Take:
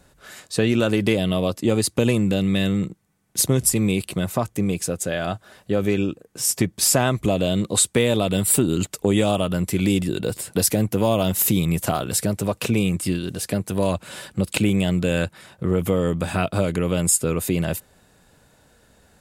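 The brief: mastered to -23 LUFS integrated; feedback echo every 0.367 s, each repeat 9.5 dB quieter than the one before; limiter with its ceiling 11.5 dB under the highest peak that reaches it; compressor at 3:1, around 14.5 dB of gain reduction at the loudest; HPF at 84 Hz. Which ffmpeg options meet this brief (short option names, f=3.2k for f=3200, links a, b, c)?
-af "highpass=84,acompressor=threshold=-35dB:ratio=3,alimiter=level_in=4dB:limit=-24dB:level=0:latency=1,volume=-4dB,aecho=1:1:367|734|1101|1468:0.335|0.111|0.0365|0.012,volume=15dB"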